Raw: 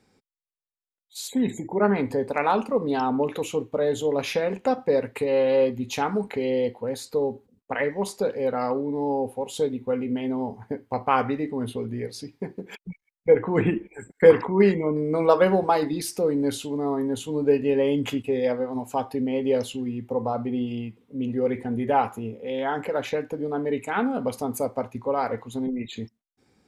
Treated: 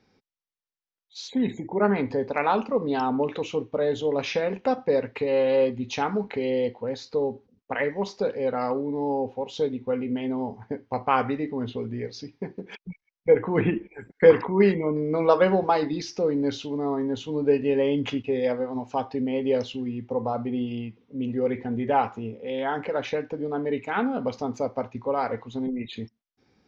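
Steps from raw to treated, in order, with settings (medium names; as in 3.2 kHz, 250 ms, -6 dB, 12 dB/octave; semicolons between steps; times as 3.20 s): elliptic low-pass 6 kHz, stop band 40 dB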